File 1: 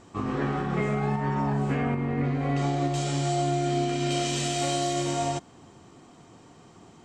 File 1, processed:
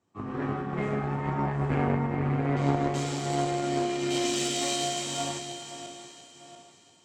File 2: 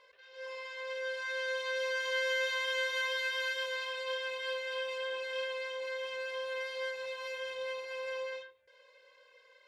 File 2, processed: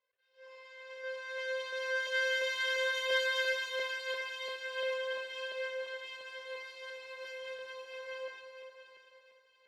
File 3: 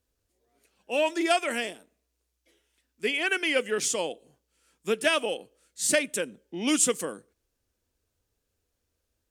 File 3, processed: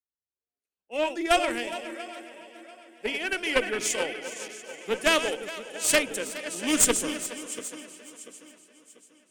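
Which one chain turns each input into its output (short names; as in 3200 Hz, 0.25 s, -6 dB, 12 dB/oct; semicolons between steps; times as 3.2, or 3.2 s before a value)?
regenerating reverse delay 0.345 s, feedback 74%, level -8 dB; HPF 70 Hz; added harmonics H 6 -10 dB, 8 -15 dB, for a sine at -8 dBFS; on a send: split-band echo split 330 Hz, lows 0.177 s, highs 0.417 s, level -9.5 dB; on the sum: three-band expander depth 70%; gain -3 dB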